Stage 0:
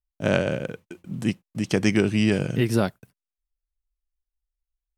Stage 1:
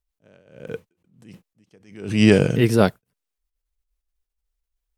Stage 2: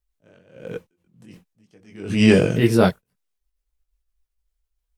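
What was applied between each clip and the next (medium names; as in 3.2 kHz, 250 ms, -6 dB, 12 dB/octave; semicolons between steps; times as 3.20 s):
peaking EQ 460 Hz +6.5 dB 0.24 oct; attacks held to a fixed rise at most 100 dB/s; trim +7 dB
chorus voices 6, 1.1 Hz, delay 20 ms, depth 3.3 ms; trim +3.5 dB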